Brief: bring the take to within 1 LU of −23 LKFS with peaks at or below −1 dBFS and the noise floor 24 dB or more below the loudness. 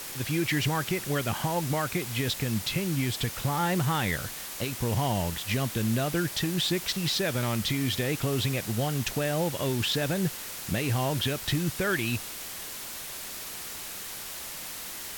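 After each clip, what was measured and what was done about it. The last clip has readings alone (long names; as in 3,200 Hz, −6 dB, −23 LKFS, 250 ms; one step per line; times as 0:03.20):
background noise floor −39 dBFS; target noise floor −53 dBFS; integrated loudness −29.0 LKFS; sample peak −15.0 dBFS; target loudness −23.0 LKFS
→ noise reduction from a noise print 14 dB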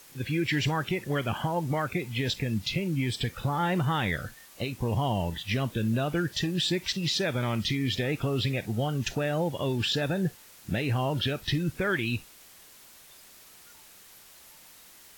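background noise floor −53 dBFS; integrated loudness −29.0 LKFS; sample peak −17.0 dBFS; target loudness −23.0 LKFS
→ level +6 dB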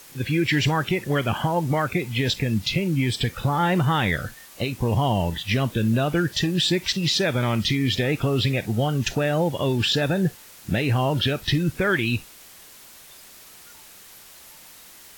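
integrated loudness −23.0 LKFS; sample peak −11.0 dBFS; background noise floor −47 dBFS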